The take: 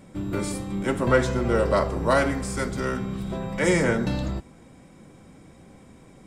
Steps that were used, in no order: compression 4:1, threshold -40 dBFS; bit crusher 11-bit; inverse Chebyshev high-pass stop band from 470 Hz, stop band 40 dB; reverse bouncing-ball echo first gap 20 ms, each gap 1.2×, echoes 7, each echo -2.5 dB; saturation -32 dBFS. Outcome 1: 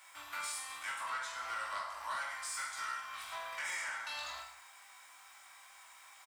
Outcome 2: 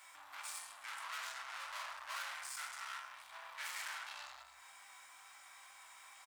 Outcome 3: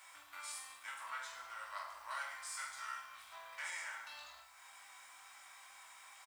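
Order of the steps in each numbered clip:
bit crusher > inverse Chebyshev high-pass > compression > reverse bouncing-ball echo > saturation; reverse bouncing-ball echo > saturation > bit crusher > compression > inverse Chebyshev high-pass; compression > saturation > reverse bouncing-ball echo > bit crusher > inverse Chebyshev high-pass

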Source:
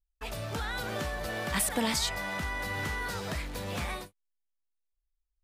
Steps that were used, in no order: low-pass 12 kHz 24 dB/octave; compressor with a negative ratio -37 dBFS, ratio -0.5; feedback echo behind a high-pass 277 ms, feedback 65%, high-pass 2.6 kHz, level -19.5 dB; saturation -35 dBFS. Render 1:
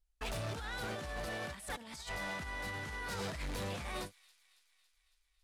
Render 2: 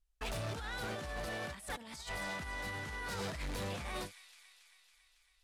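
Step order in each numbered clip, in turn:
low-pass > compressor with a negative ratio > saturation > feedback echo behind a high-pass; feedback echo behind a high-pass > compressor with a negative ratio > low-pass > saturation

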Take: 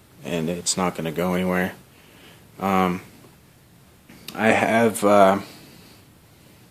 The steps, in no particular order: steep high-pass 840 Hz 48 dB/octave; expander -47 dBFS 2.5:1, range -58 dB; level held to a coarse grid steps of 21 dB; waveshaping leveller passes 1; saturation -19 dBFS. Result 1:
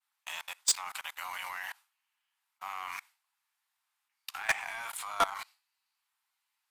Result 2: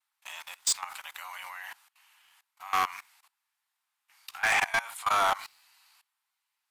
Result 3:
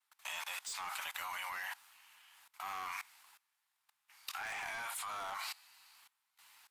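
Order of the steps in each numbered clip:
steep high-pass > level held to a coarse grid > expander > waveshaping leveller > saturation; steep high-pass > expander > waveshaping leveller > level held to a coarse grid > saturation; steep high-pass > saturation > waveshaping leveller > expander > level held to a coarse grid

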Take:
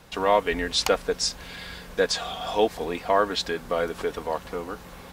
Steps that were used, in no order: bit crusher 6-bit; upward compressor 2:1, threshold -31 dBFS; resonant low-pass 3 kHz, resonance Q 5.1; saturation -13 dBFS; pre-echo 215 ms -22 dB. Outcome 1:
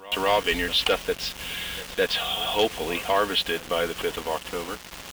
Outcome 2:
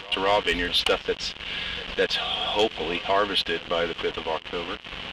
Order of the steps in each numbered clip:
resonant low-pass > bit crusher > upward compressor > pre-echo > saturation; upward compressor > bit crusher > resonant low-pass > saturation > pre-echo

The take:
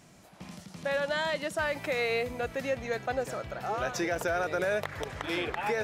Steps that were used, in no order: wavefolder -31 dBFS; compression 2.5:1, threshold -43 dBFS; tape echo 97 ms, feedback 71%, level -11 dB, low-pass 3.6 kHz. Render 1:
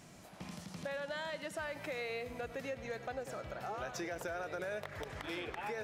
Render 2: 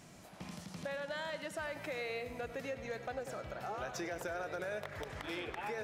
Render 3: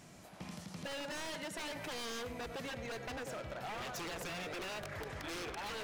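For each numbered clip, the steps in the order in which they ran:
tape echo > compression > wavefolder; compression > tape echo > wavefolder; tape echo > wavefolder > compression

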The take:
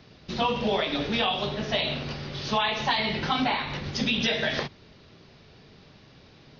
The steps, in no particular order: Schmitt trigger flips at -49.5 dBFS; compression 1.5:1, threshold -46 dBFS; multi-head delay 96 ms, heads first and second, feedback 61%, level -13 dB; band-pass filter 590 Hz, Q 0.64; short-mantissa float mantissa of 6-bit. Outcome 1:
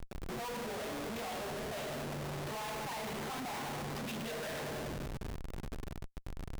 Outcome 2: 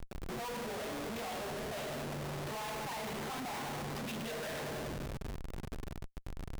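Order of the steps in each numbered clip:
compression > multi-head delay > short-mantissa float > band-pass filter > Schmitt trigger; compression > band-pass filter > short-mantissa float > multi-head delay > Schmitt trigger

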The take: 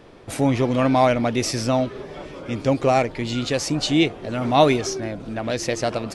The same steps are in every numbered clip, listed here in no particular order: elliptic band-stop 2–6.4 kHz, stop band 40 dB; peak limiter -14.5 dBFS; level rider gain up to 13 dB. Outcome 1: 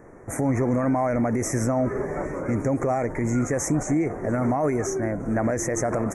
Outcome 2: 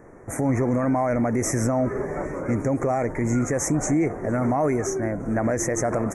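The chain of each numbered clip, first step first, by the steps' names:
level rider > peak limiter > elliptic band-stop; level rider > elliptic band-stop > peak limiter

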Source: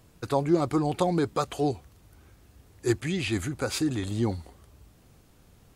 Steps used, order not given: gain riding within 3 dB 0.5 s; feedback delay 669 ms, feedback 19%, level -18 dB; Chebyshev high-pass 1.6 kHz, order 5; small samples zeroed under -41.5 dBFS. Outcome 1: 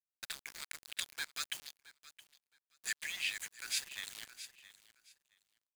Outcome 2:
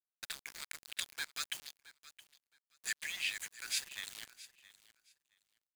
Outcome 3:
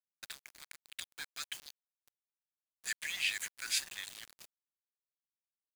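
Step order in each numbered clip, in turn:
Chebyshev high-pass > small samples zeroed > feedback delay > gain riding; Chebyshev high-pass > small samples zeroed > gain riding > feedback delay; feedback delay > gain riding > Chebyshev high-pass > small samples zeroed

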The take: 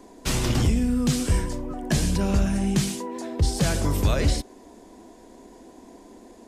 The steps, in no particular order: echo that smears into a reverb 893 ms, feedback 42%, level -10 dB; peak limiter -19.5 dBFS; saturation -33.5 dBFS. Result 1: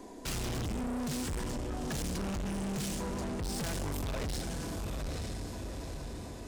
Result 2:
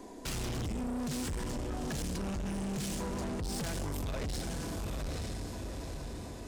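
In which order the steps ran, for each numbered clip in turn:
echo that smears into a reverb > saturation > peak limiter; echo that smears into a reverb > peak limiter > saturation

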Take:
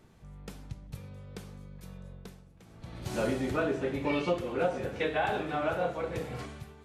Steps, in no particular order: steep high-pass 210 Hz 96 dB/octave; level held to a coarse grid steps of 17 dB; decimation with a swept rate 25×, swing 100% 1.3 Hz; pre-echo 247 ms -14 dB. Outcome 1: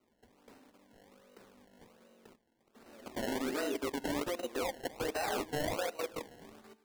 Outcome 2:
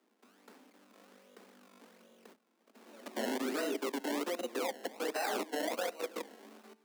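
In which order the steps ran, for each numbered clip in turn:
pre-echo > level held to a coarse grid > steep high-pass > decimation with a swept rate; pre-echo > decimation with a swept rate > level held to a coarse grid > steep high-pass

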